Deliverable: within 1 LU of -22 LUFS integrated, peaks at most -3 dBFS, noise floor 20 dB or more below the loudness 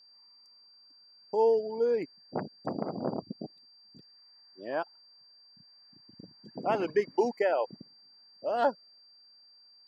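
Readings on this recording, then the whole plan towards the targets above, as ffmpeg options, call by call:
steady tone 4.7 kHz; tone level -56 dBFS; loudness -31.0 LUFS; peak level -14.0 dBFS; loudness target -22.0 LUFS
-> -af "bandreject=f=4700:w=30"
-af "volume=2.82"

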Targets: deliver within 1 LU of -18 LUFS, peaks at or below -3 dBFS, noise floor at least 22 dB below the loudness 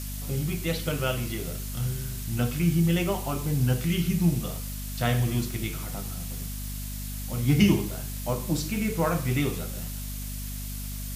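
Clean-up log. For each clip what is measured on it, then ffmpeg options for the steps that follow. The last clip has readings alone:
hum 50 Hz; highest harmonic 250 Hz; hum level -33 dBFS; noise floor -35 dBFS; noise floor target -50 dBFS; loudness -28.0 LUFS; peak level -8.0 dBFS; loudness target -18.0 LUFS
-> -af "bandreject=f=50:t=h:w=6,bandreject=f=100:t=h:w=6,bandreject=f=150:t=h:w=6,bandreject=f=200:t=h:w=6,bandreject=f=250:t=h:w=6"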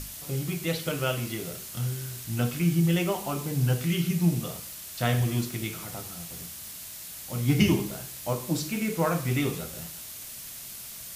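hum not found; noise floor -41 dBFS; noise floor target -51 dBFS
-> -af "afftdn=nr=10:nf=-41"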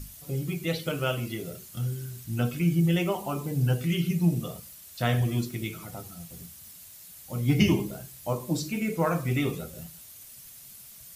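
noise floor -48 dBFS; noise floor target -51 dBFS
-> -af "afftdn=nr=6:nf=-48"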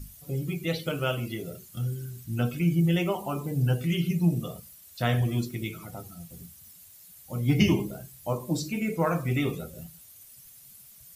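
noise floor -52 dBFS; loudness -28.5 LUFS; peak level -9.5 dBFS; loudness target -18.0 LUFS
-> -af "volume=3.35,alimiter=limit=0.708:level=0:latency=1"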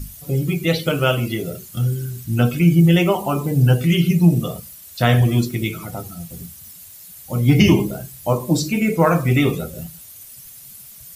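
loudness -18.0 LUFS; peak level -3.0 dBFS; noise floor -41 dBFS

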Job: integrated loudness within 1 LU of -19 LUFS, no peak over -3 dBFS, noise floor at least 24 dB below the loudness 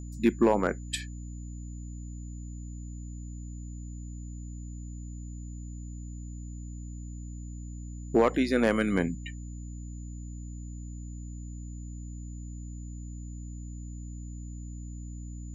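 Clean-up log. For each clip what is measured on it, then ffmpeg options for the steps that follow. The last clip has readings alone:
hum 60 Hz; highest harmonic 300 Hz; hum level -37 dBFS; steady tone 7 kHz; tone level -55 dBFS; loudness -34.5 LUFS; peak level -13.0 dBFS; loudness target -19.0 LUFS
-> -af "bandreject=f=60:t=h:w=4,bandreject=f=120:t=h:w=4,bandreject=f=180:t=h:w=4,bandreject=f=240:t=h:w=4,bandreject=f=300:t=h:w=4"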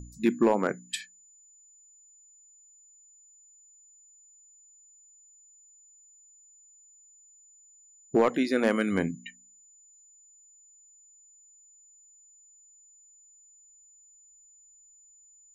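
hum not found; steady tone 7 kHz; tone level -55 dBFS
-> -af "bandreject=f=7000:w=30"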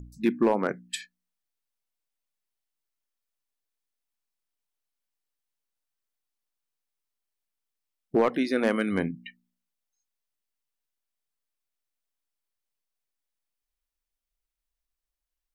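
steady tone not found; loudness -27.0 LUFS; peak level -12.5 dBFS; loudness target -19.0 LUFS
-> -af "volume=2.51"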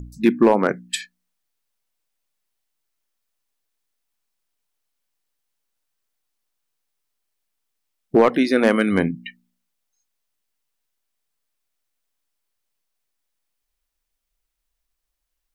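loudness -19.0 LUFS; peak level -4.5 dBFS; noise floor -78 dBFS

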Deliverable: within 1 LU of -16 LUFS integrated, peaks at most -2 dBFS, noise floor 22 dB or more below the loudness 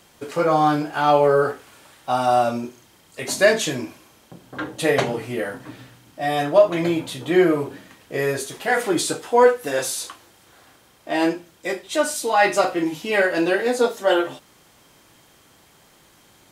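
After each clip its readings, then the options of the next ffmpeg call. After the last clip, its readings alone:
loudness -21.0 LUFS; peak level -4.0 dBFS; loudness target -16.0 LUFS
-> -af "volume=1.78,alimiter=limit=0.794:level=0:latency=1"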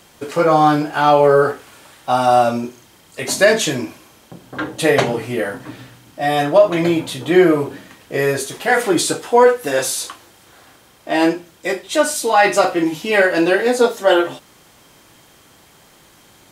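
loudness -16.5 LUFS; peak level -2.0 dBFS; noise floor -50 dBFS

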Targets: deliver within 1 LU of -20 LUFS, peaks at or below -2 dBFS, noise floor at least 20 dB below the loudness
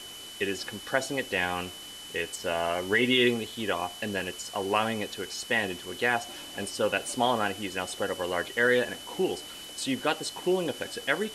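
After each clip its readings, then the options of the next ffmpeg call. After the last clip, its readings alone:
steady tone 3 kHz; tone level -43 dBFS; noise floor -43 dBFS; noise floor target -49 dBFS; loudness -29.0 LUFS; peak level -10.5 dBFS; loudness target -20.0 LUFS
-> -af "bandreject=f=3000:w=30"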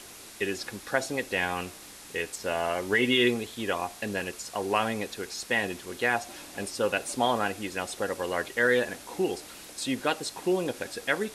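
steady tone not found; noise floor -47 dBFS; noise floor target -49 dBFS
-> -af "afftdn=nr=6:nf=-47"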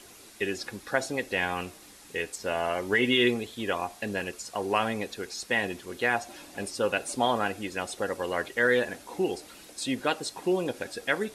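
noise floor -51 dBFS; loudness -29.5 LUFS; peak level -10.5 dBFS; loudness target -20.0 LUFS
-> -af "volume=2.99,alimiter=limit=0.794:level=0:latency=1"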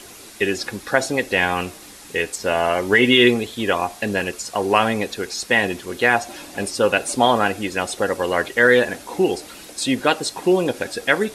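loudness -20.0 LUFS; peak level -2.0 dBFS; noise floor -41 dBFS

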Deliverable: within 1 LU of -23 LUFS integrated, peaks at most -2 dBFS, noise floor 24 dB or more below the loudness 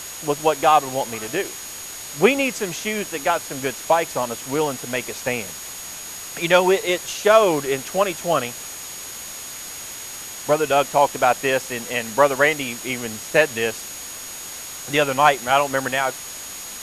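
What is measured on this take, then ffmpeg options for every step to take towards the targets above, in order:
steady tone 6.7 kHz; tone level -36 dBFS; noise floor -35 dBFS; noise floor target -46 dBFS; loudness -21.5 LUFS; peak level -1.5 dBFS; loudness target -23.0 LUFS
-> -af "bandreject=f=6700:w=30"
-af "afftdn=nr=11:nf=-35"
-af "volume=0.841"

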